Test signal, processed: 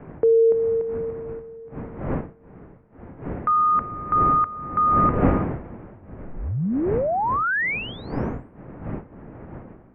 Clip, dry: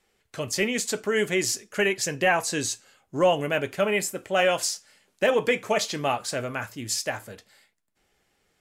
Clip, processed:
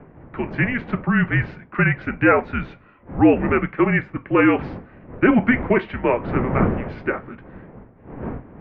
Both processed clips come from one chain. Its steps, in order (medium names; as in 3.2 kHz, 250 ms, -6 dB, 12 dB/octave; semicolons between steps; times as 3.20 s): wind noise 290 Hz -30 dBFS; mistuned SSB -240 Hz 340–2500 Hz; trim +7 dB